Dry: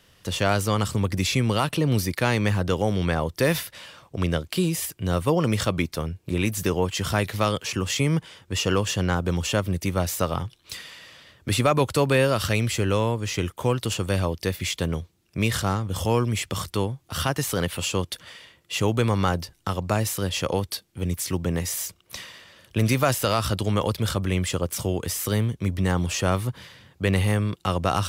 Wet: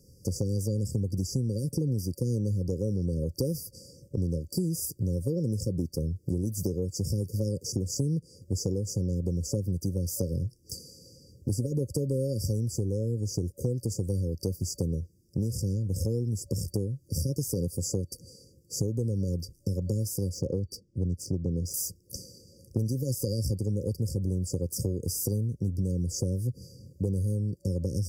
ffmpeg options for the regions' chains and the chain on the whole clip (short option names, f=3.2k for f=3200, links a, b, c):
-filter_complex "[0:a]asettb=1/sr,asplit=3[a][b][c];[a]atrim=end=20.344[d];[b]atrim=start=20.34:end=21.74,asetpts=PTS-STARTPTS,afade=t=in:d=0.004:c=qsin,afade=t=out:st=1.396:d=0.004:c=qsin,equalizer=f=1.5k:w=1.8:g=-11.5,adynamicsmooth=sensitivity=3.5:basefreq=3.8k[e];[c]atrim=start=21.736[f];[d][e]acrossfade=d=0.004:c1=hsin:c2=qsin[g];[g][f]acrossfade=d=0.004:c1=qsin:c2=hsin,afftfilt=real='re*(1-between(b*sr/4096,570,4600))':imag='im*(1-between(b*sr/4096,570,4600))':win_size=4096:overlap=0.75,equalizer=f=100:w=0.46:g=6,acompressor=threshold=-26dB:ratio=6"